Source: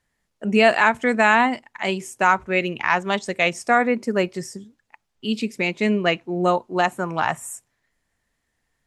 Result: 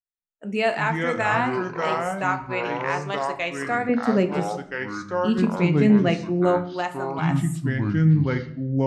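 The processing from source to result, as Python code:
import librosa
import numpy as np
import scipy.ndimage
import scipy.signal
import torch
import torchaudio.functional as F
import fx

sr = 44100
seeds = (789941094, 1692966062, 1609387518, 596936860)

y = fx.noise_reduce_blind(x, sr, reduce_db=27)
y = fx.peak_eq(y, sr, hz=150.0, db=14.5, octaves=2.9, at=(3.89, 6.57))
y = fx.echo_pitch(y, sr, ms=187, semitones=-5, count=2, db_per_echo=-3.0)
y = fx.room_shoebox(y, sr, seeds[0], volume_m3=110.0, walls='mixed', distance_m=0.31)
y = y * librosa.db_to_amplitude(-8.0)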